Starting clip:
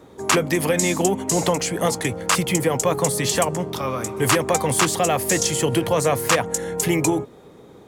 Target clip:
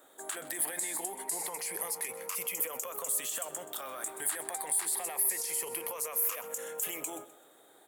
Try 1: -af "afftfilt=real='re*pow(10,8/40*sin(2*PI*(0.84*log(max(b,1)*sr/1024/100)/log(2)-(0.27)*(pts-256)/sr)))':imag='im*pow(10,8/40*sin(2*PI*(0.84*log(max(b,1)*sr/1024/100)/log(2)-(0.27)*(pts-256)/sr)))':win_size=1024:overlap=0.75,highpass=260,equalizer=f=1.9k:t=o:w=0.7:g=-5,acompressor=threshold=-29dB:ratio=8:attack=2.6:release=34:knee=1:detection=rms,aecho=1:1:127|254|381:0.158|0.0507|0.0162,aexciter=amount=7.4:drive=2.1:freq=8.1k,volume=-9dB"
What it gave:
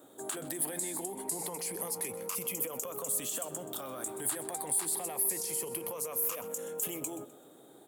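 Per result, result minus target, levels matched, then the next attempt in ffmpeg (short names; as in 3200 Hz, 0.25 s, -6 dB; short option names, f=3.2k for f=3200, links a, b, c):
250 Hz band +8.0 dB; 2000 Hz band -4.5 dB
-af "afftfilt=real='re*pow(10,8/40*sin(2*PI*(0.84*log(max(b,1)*sr/1024/100)/log(2)-(0.27)*(pts-256)/sr)))':imag='im*pow(10,8/40*sin(2*PI*(0.84*log(max(b,1)*sr/1024/100)/log(2)-(0.27)*(pts-256)/sr)))':win_size=1024:overlap=0.75,highpass=610,equalizer=f=1.9k:t=o:w=0.7:g=-5,acompressor=threshold=-29dB:ratio=8:attack=2.6:release=34:knee=1:detection=rms,aecho=1:1:127|254|381:0.158|0.0507|0.0162,aexciter=amount=7.4:drive=2.1:freq=8.1k,volume=-9dB"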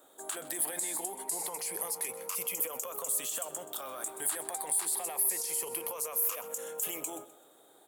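2000 Hz band -3.5 dB
-af "afftfilt=real='re*pow(10,8/40*sin(2*PI*(0.84*log(max(b,1)*sr/1024/100)/log(2)-(0.27)*(pts-256)/sr)))':imag='im*pow(10,8/40*sin(2*PI*(0.84*log(max(b,1)*sr/1024/100)/log(2)-(0.27)*(pts-256)/sr)))':win_size=1024:overlap=0.75,highpass=610,equalizer=f=1.9k:t=o:w=0.7:g=2,acompressor=threshold=-29dB:ratio=8:attack=2.6:release=34:knee=1:detection=rms,aecho=1:1:127|254|381:0.158|0.0507|0.0162,aexciter=amount=7.4:drive=2.1:freq=8.1k,volume=-9dB"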